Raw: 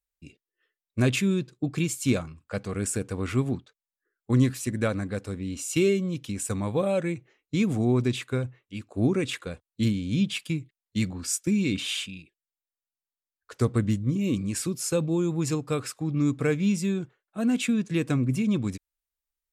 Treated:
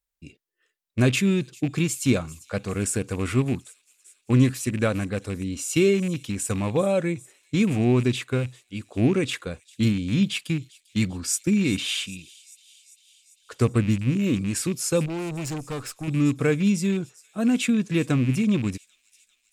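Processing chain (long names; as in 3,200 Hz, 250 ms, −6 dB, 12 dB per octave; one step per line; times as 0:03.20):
loose part that buzzes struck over −27 dBFS, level −31 dBFS
delay with a high-pass on its return 396 ms, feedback 66%, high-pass 5,000 Hz, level −16 dB
0:15.06–0:16.08: tube saturation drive 30 dB, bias 0.55
level +3 dB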